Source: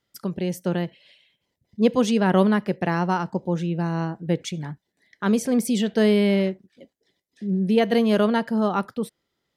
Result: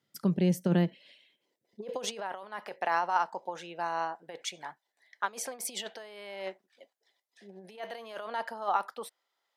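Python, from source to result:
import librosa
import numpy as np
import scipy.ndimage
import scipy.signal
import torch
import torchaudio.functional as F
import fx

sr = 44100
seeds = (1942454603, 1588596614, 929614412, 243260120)

y = fx.over_compress(x, sr, threshold_db=-23.0, ratio=-0.5)
y = fx.filter_sweep_highpass(y, sr, from_hz=150.0, to_hz=800.0, start_s=0.59, end_s=2.34, q=1.8)
y = y * librosa.db_to_amplitude(-6.5)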